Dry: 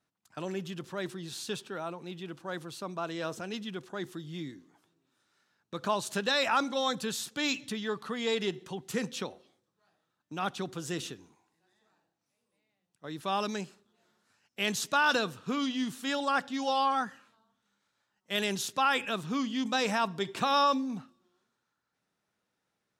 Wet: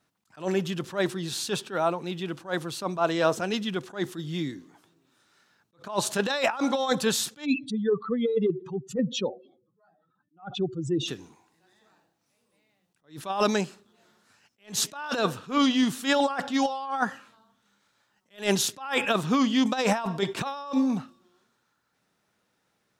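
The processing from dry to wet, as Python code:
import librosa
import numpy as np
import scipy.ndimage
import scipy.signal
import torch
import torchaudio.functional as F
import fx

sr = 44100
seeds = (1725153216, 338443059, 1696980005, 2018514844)

y = fx.spec_expand(x, sr, power=2.7, at=(7.44, 11.07), fade=0.02)
y = fx.dynamic_eq(y, sr, hz=740.0, q=0.86, threshold_db=-41.0, ratio=4.0, max_db=7)
y = fx.over_compress(y, sr, threshold_db=-28.0, ratio=-0.5)
y = fx.attack_slew(y, sr, db_per_s=220.0)
y = y * librosa.db_to_amplitude(5.5)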